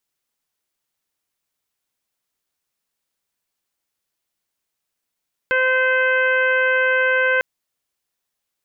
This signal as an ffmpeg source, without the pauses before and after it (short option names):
-f lavfi -i "aevalsrc='0.1*sin(2*PI*516*t)+0.0398*sin(2*PI*1032*t)+0.141*sin(2*PI*1548*t)+0.0562*sin(2*PI*2064*t)+0.0398*sin(2*PI*2580*t)+0.0141*sin(2*PI*3096*t)':d=1.9:s=44100"